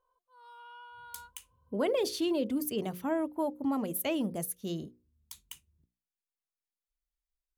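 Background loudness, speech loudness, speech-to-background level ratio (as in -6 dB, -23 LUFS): -51.5 LUFS, -32.5 LUFS, 19.0 dB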